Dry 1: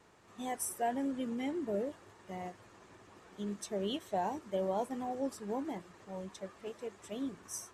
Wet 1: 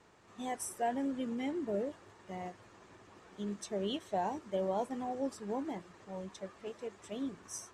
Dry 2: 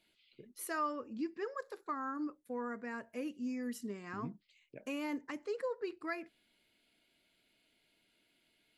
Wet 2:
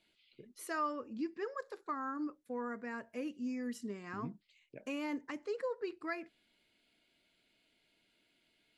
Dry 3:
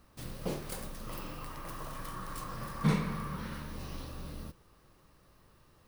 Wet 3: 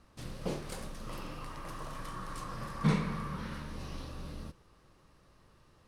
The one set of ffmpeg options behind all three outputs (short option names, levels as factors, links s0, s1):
-af "lowpass=8900"